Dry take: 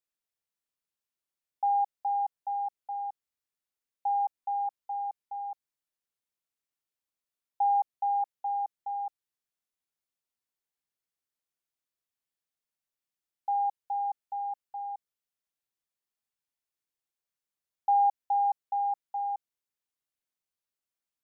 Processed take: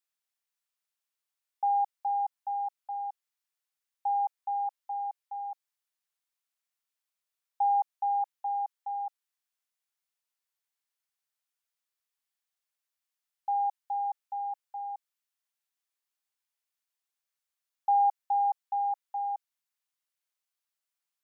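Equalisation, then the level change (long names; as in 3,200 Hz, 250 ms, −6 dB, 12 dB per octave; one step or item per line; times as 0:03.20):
high-pass filter 790 Hz 12 dB per octave
+2.5 dB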